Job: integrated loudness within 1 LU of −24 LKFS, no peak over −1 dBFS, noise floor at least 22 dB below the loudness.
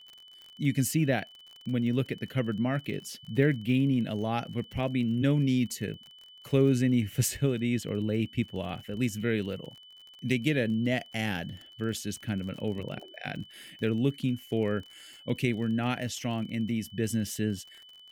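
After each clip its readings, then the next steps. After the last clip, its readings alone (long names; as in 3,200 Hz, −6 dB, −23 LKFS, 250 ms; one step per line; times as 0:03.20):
crackle rate 36 per second; interfering tone 3,000 Hz; level of the tone −50 dBFS; integrated loudness −30.0 LKFS; sample peak −12.0 dBFS; target loudness −24.0 LKFS
→ click removal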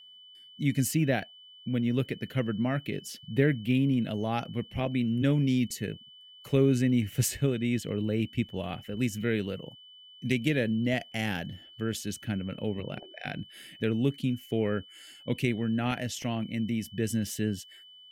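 crackle rate 0.055 per second; interfering tone 3,000 Hz; level of the tone −50 dBFS
→ notch filter 3,000 Hz, Q 30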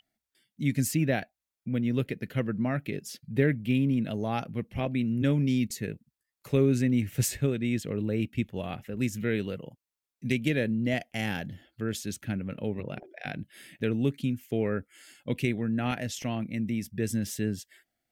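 interfering tone none found; integrated loudness −30.0 LKFS; sample peak −12.0 dBFS; target loudness −24.0 LKFS
→ level +6 dB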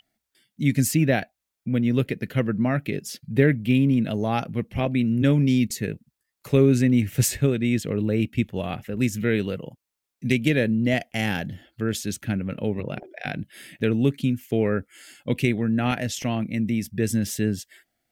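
integrated loudness −24.0 LKFS; sample peak −6.0 dBFS; background noise floor −83 dBFS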